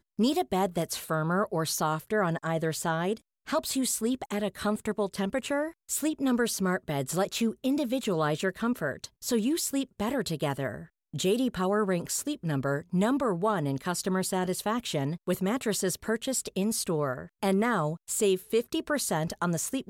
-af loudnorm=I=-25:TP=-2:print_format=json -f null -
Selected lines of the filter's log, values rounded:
"input_i" : "-29.2",
"input_tp" : "-15.3",
"input_lra" : "1.2",
"input_thresh" : "-39.2",